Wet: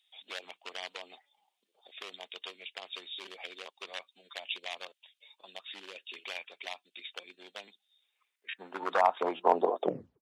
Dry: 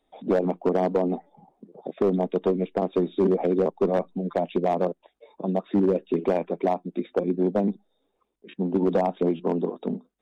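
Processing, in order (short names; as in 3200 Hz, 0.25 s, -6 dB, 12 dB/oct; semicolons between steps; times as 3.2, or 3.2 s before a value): tape stop at the end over 0.40 s; high-pass sweep 3000 Hz -> 490 Hz, 7.85–10.08; gain +3.5 dB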